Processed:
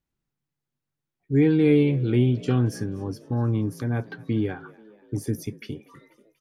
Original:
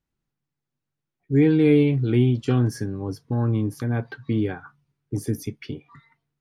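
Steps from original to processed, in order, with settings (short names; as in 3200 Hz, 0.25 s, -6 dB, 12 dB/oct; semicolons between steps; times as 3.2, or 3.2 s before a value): frequency-shifting echo 0.242 s, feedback 59%, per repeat +53 Hz, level -22.5 dB; gain -1.5 dB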